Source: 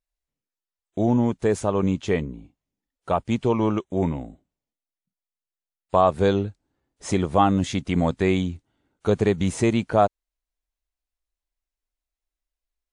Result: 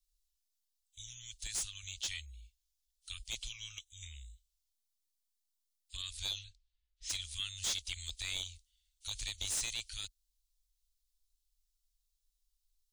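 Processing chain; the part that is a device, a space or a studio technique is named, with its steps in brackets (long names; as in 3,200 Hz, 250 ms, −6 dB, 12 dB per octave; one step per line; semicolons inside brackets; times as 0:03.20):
0:05.97–0:07.10: low-pass that shuts in the quiet parts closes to 2,200 Hz, open at −14 dBFS
inverse Chebyshev band-stop filter 190–790 Hz, stop band 80 dB
saturation between pre-emphasis and de-emphasis (high-shelf EQ 4,400 Hz +10 dB; soft clipping −33 dBFS, distortion −7 dB; high-shelf EQ 4,400 Hz −10 dB)
level +8 dB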